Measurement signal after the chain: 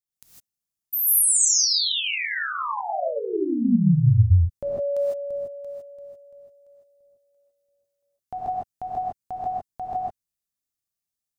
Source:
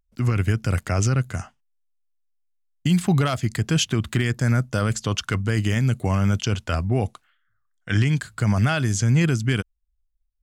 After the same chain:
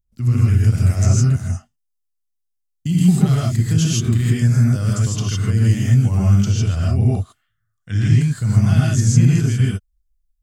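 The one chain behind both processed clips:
bass and treble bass +13 dB, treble +10 dB
reverb whose tail is shaped and stops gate 180 ms rising, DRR −5.5 dB
level −11.5 dB

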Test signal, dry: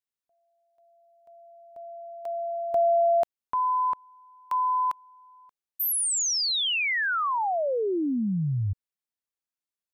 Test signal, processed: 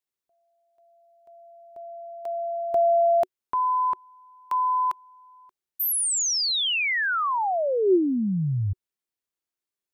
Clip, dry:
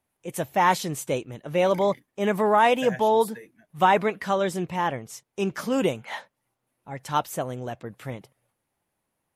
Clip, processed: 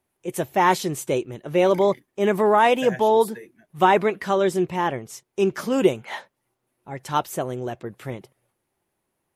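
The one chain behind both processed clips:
parametric band 370 Hz +8.5 dB 0.28 octaves
level +1.5 dB

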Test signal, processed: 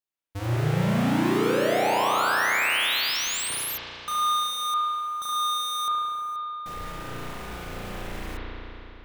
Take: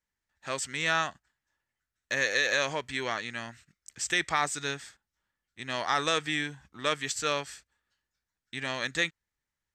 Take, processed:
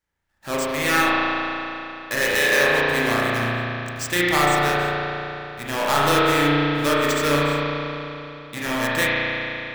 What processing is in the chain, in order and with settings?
each half-wave held at its own peak
spring reverb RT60 3.2 s, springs 34 ms, chirp 50 ms, DRR −7 dB

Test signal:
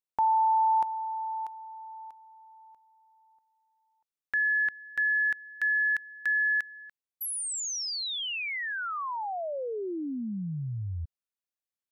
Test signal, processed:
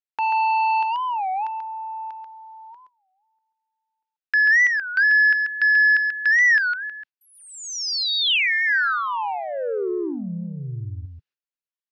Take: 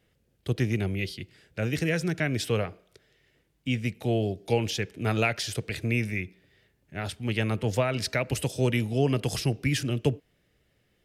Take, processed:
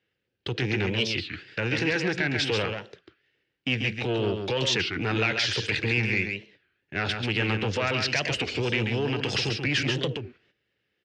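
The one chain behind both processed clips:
noise gate −55 dBFS, range −19 dB
in parallel at −1.5 dB: downward compressor, threshold −38 dBFS
on the sum: brickwall limiter −19 dBFS
soft clipping −24.5 dBFS
loudspeaker in its box 140–5,200 Hz, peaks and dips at 160 Hz −8 dB, 240 Hz −6 dB, 650 Hz −8 dB, 1,100 Hz −3 dB, 1,600 Hz +5 dB, 2,700 Hz +5 dB
on a send: single-tap delay 137 ms −5.5 dB
on the sum: wow of a warped record 33 1/3 rpm, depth 250 cents
level +7 dB

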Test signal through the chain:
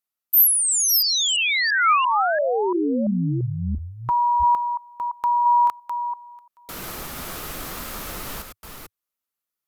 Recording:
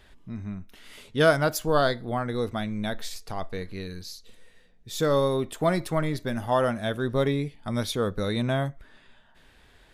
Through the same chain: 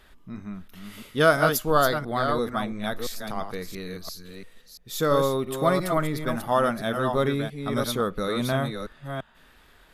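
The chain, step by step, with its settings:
delay that plays each chunk backwards 341 ms, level −6 dB
thirty-one-band graphic EQ 100 Hz −11 dB, 1,250 Hz +7 dB, 12,500 Hz +10 dB

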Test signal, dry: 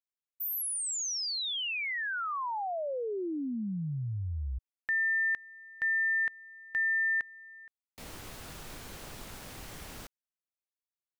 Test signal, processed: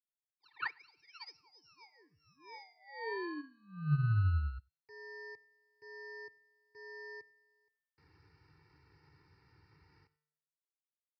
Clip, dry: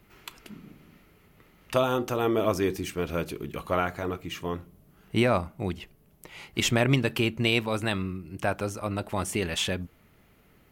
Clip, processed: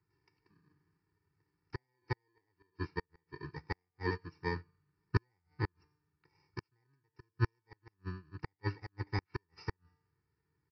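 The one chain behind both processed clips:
samples in bit-reversed order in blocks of 32 samples
high-pass filter 79 Hz 24 dB per octave
tuned comb filter 150 Hz, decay 0.79 s, harmonics all, mix 60%
on a send: single-tap delay 92 ms −20 dB
on the sum: gate with flip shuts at −22 dBFS, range −32 dB
comb filter 2.2 ms, depth 90%
downsampling to 11,025 Hz
phaser with its sweep stopped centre 1,400 Hz, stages 4
expander for the loud parts 2.5 to 1, over −52 dBFS
level +13 dB

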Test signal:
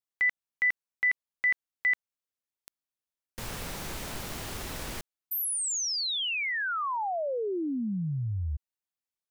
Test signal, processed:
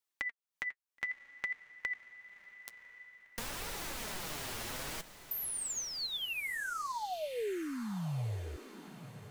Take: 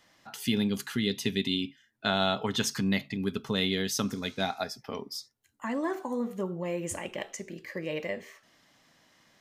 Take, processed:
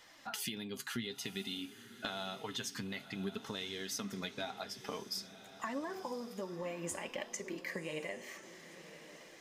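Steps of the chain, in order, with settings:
low-shelf EQ 380 Hz −6.5 dB
downward compressor 10 to 1, threshold −42 dBFS
flanger 0.54 Hz, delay 2 ms, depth 6.9 ms, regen +41%
on a send: feedback delay with all-pass diffusion 1,048 ms, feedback 47%, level −13.5 dB
on the sum: level +8.5 dB

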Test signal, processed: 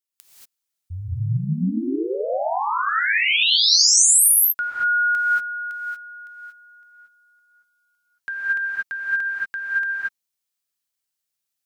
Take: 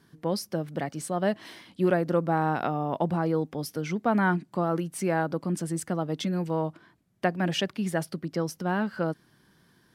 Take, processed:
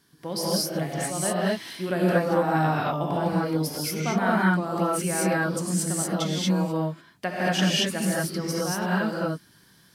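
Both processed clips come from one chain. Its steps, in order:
high-shelf EQ 2,400 Hz +11 dB
reverb whose tail is shaped and stops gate 260 ms rising, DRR −6.5 dB
level −6 dB

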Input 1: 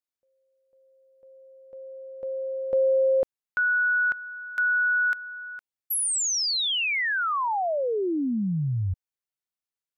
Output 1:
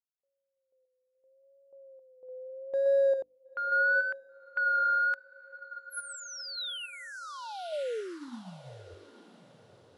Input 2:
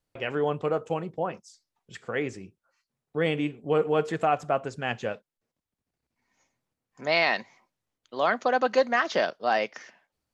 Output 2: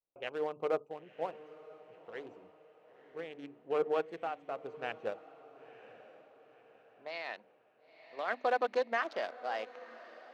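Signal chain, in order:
adaptive Wiener filter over 25 samples
brickwall limiter −18.5 dBFS
low-pass that shuts in the quiet parts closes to 1,900 Hz, open at −27.5 dBFS
mains-hum notches 50/100/150/200/250/300 Hz
sample-and-hold tremolo
bass and treble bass −15 dB, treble −2 dB
pitch vibrato 0.77 Hz 68 cents
feedback delay with all-pass diffusion 977 ms, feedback 44%, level −12 dB
expander for the loud parts 1.5 to 1, over −41 dBFS

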